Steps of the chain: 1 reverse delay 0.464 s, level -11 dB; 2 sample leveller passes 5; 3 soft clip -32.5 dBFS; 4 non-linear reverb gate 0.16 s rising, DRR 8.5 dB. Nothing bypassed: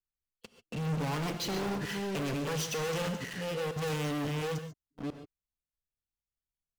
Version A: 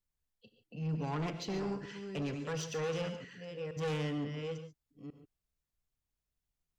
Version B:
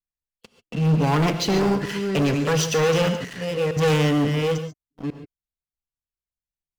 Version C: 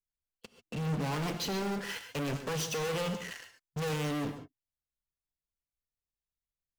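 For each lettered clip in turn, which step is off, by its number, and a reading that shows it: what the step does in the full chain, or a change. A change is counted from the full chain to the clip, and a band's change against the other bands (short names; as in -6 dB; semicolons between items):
2, 8 kHz band -4.0 dB; 3, distortion -9 dB; 1, momentary loudness spread change +1 LU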